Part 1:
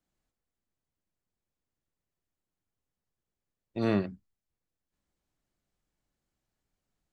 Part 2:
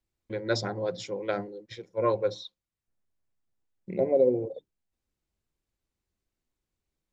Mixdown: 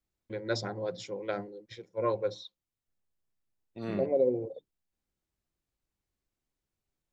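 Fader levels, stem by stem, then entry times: -9.5 dB, -4.0 dB; 0.00 s, 0.00 s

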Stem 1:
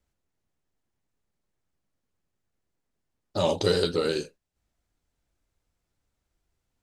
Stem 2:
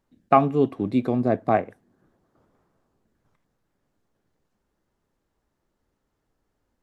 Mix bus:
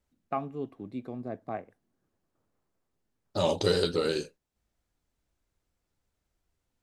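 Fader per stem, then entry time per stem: -2.0 dB, -15.5 dB; 0.00 s, 0.00 s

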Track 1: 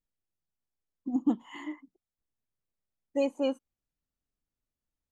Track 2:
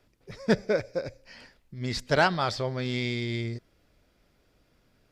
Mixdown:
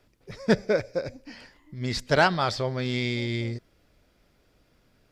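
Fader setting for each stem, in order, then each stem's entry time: -20.0 dB, +2.0 dB; 0.00 s, 0.00 s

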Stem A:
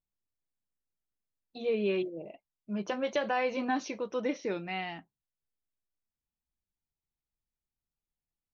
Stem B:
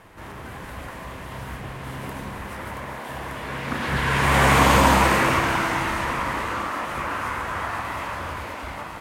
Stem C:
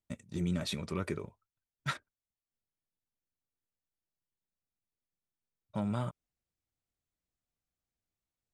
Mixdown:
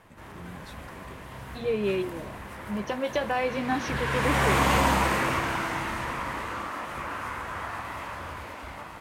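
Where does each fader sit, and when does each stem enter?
+2.5 dB, -6.5 dB, -13.0 dB; 0.00 s, 0.00 s, 0.00 s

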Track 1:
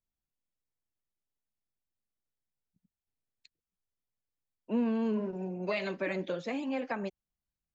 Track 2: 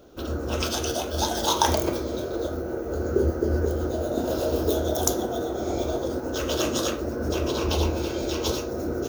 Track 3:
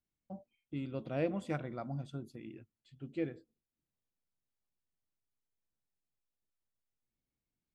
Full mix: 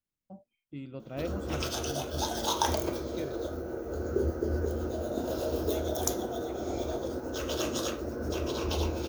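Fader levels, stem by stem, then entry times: -19.0 dB, -6.5 dB, -2.0 dB; 0.00 s, 1.00 s, 0.00 s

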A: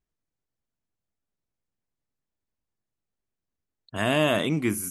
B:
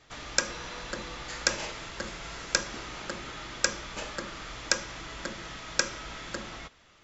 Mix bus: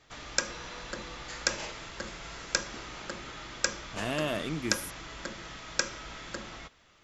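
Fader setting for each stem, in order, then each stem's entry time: -9.0 dB, -2.5 dB; 0.00 s, 0.00 s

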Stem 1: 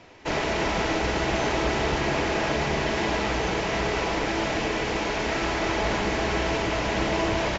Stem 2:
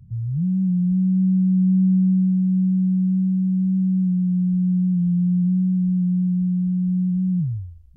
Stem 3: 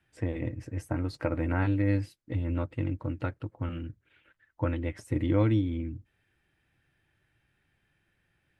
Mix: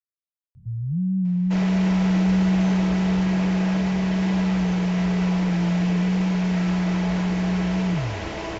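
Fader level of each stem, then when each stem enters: -6.0 dB, -2.5 dB, mute; 1.25 s, 0.55 s, mute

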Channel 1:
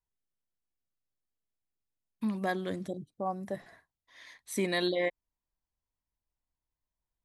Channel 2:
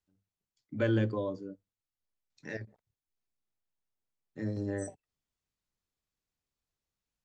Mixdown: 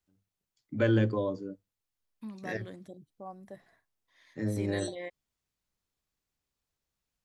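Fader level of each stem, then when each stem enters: -10.5 dB, +3.0 dB; 0.00 s, 0.00 s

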